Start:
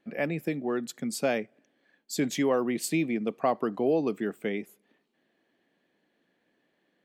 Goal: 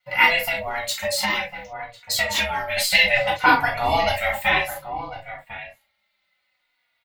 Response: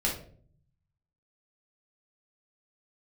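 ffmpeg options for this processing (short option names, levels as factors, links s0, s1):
-filter_complex "[0:a]agate=range=0.178:threshold=0.001:ratio=16:detection=peak,aeval=exprs='val(0)*sin(2*PI*350*n/s)':c=same,deesser=0.95,equalizer=f=1000:t=o:w=1:g=4,equalizer=f=2000:t=o:w=1:g=11,equalizer=f=4000:t=o:w=1:g=11,asplit=2[s0][s1];[s1]adelay=1050,volume=0.316,highshelf=f=4000:g=-23.6[s2];[s0][s2]amix=inputs=2:normalize=0[s3];[1:a]atrim=start_sample=2205,atrim=end_sample=3528[s4];[s3][s4]afir=irnorm=-1:irlink=0,asettb=1/sr,asplit=3[s5][s6][s7];[s5]atrim=end=0.364[s8];[s6]atrim=start=0.36:end=2.77,asetpts=PTS-STARTPTS,afade=t=in:d=0.004:c=qsin,afade=t=out:st=2.406:d=0.004:c=qsin,acompressor=threshold=0.1:ratio=12[s9];[s7]atrim=start=2.766[s10];[s8][s9]acrossfade=d=0.004:c1=hsin:c2=qsin[s11];[s11][s10]acrossfade=d=0.004:c1=qsin:c2=hsin,aemphasis=mode=production:type=riaa,asplit=2[s12][s13];[s13]adelay=3.5,afreqshift=-0.61[s14];[s12][s14]amix=inputs=2:normalize=1,volume=1.58"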